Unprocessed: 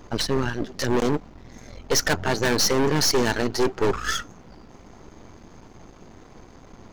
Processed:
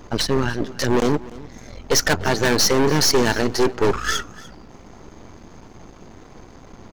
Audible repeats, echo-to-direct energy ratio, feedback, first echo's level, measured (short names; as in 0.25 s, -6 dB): 1, -20.0 dB, no steady repeat, -20.0 dB